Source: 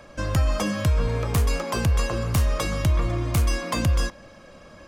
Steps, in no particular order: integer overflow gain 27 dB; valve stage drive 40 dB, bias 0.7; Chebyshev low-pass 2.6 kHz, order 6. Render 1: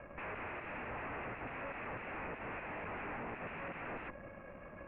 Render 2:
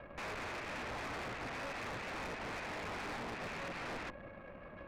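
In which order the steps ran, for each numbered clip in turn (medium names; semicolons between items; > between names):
integer overflow > valve stage > Chebyshev low-pass; integer overflow > Chebyshev low-pass > valve stage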